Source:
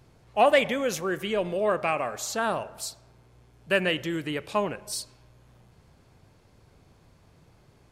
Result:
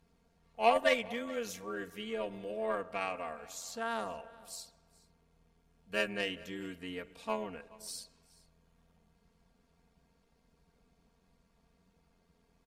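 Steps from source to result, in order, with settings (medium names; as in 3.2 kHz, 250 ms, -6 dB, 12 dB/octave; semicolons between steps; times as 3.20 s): Chebyshev shaper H 3 -15 dB, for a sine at -9.5 dBFS; delay 265 ms -22.5 dB; granular stretch 1.6×, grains 23 ms; trim -4 dB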